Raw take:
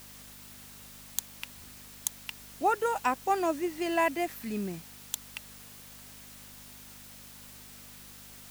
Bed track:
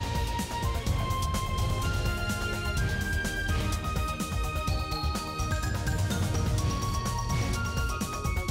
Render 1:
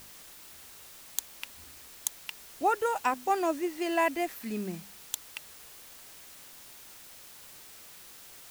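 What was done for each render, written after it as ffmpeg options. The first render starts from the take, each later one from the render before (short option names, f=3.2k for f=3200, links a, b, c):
-af "bandreject=f=50:t=h:w=4,bandreject=f=100:t=h:w=4,bandreject=f=150:t=h:w=4,bandreject=f=200:t=h:w=4,bandreject=f=250:t=h:w=4"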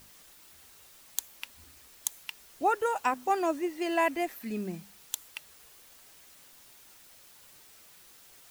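-af "afftdn=nr=6:nf=-51"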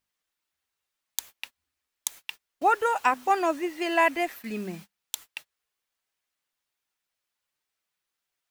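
-af "agate=range=-32dB:threshold=-44dB:ratio=16:detection=peak,equalizer=f=1.9k:w=0.39:g=7"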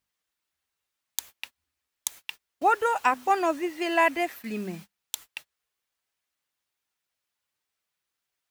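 -af "highpass=45,lowshelf=f=86:g=5.5"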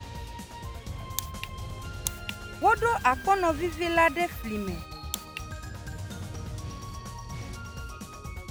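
-filter_complex "[1:a]volume=-9.5dB[a];[0:a][a]amix=inputs=2:normalize=0"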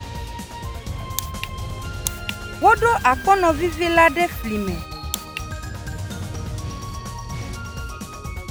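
-af "volume=8dB,alimiter=limit=-3dB:level=0:latency=1"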